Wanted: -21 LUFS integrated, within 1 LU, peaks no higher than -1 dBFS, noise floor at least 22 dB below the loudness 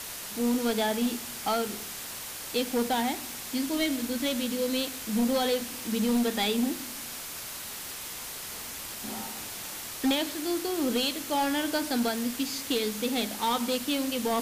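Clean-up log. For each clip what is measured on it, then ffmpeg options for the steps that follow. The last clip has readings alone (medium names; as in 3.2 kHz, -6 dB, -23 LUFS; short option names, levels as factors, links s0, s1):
noise floor -39 dBFS; noise floor target -52 dBFS; loudness -29.5 LUFS; peak level -18.0 dBFS; loudness target -21.0 LUFS
-> -af "afftdn=nr=13:nf=-39"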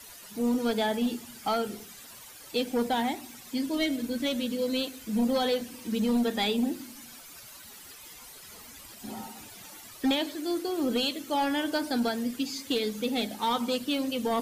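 noise floor -48 dBFS; noise floor target -52 dBFS
-> -af "afftdn=nr=6:nf=-48"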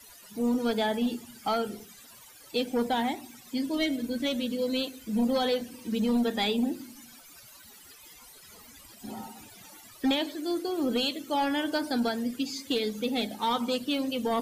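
noise floor -52 dBFS; loudness -29.5 LUFS; peak level -18.5 dBFS; loudness target -21.0 LUFS
-> -af "volume=2.66"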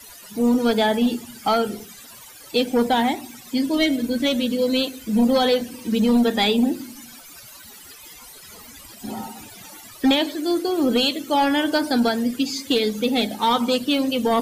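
loudness -21.0 LUFS; peak level -10.0 dBFS; noise floor -43 dBFS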